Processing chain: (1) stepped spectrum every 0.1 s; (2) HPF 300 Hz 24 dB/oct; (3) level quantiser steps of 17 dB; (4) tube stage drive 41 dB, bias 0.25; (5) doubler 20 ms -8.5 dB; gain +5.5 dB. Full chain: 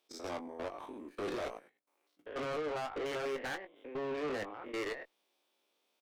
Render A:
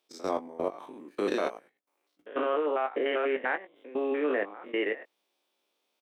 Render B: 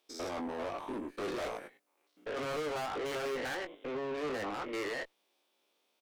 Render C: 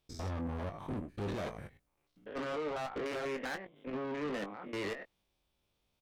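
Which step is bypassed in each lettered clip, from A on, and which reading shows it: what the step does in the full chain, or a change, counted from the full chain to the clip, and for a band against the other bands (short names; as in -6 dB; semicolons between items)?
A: 4, crest factor change +7.0 dB; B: 3, crest factor change -2.0 dB; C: 2, 125 Hz band +12.0 dB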